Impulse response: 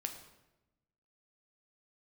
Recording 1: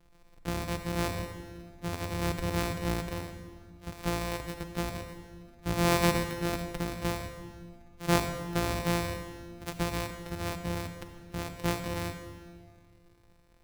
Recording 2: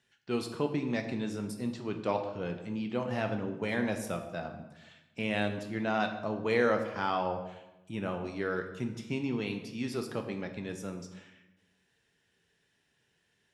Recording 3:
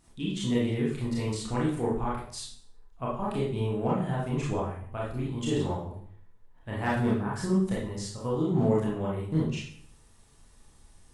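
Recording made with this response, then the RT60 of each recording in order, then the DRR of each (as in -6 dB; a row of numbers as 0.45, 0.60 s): 2; 2.0, 1.0, 0.55 s; 7.0, 4.5, -6.0 dB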